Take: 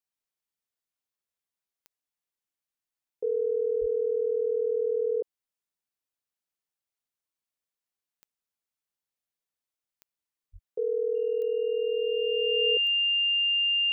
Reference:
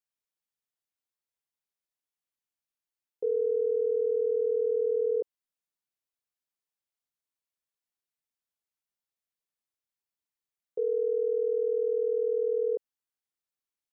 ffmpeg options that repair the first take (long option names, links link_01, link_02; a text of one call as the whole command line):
ffmpeg -i in.wav -filter_complex "[0:a]adeclick=threshold=4,bandreject=frequency=2800:width=30,asplit=3[link_01][link_02][link_03];[link_01]afade=type=out:start_time=3.8:duration=0.02[link_04];[link_02]highpass=frequency=140:width=0.5412,highpass=frequency=140:width=1.3066,afade=type=in:start_time=3.8:duration=0.02,afade=type=out:start_time=3.92:duration=0.02[link_05];[link_03]afade=type=in:start_time=3.92:duration=0.02[link_06];[link_04][link_05][link_06]amix=inputs=3:normalize=0,asplit=3[link_07][link_08][link_09];[link_07]afade=type=out:start_time=10.52:duration=0.02[link_10];[link_08]highpass=frequency=140:width=0.5412,highpass=frequency=140:width=1.3066,afade=type=in:start_time=10.52:duration=0.02,afade=type=out:start_time=10.64:duration=0.02[link_11];[link_09]afade=type=in:start_time=10.64:duration=0.02[link_12];[link_10][link_11][link_12]amix=inputs=3:normalize=0" out.wav